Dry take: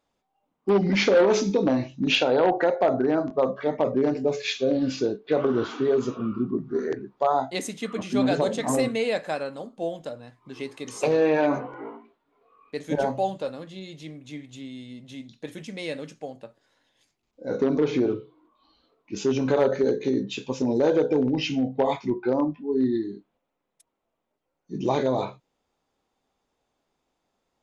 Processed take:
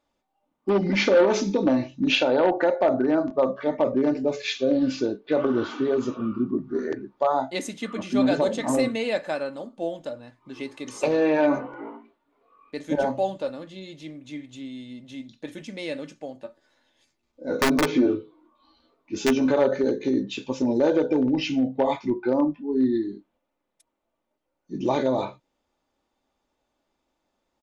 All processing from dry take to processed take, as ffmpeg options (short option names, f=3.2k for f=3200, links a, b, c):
-filter_complex "[0:a]asettb=1/sr,asplit=3[a][b][c];[a]atrim=end=16.414[d];[b]atrim=start=16.41:end=19.51,asetpts=PTS-STARTPTS,afade=t=in:d=0.004:c=qsin,afade=t=out:st=3.096:d=0.004:c=qsin,bandreject=f=2.9k:w=30,aeval=exprs='(mod(4.73*val(0)+1,2)-1)/4.73':c=same,asplit=2[e][f];[f]adelay=12,volume=-4dB[g];[e][g]amix=inputs=2:normalize=0,atrim=end_sample=136710[h];[c]atrim=start=19.506[i];[d][h]acrossfade=d=0.004:c1=hsin:c2=qsin[j];[j][i]acrossfade=d=0.004:c1=qsin:c2=hsin,highshelf=f=10k:g=-8,aecho=1:1:3.4:0.35"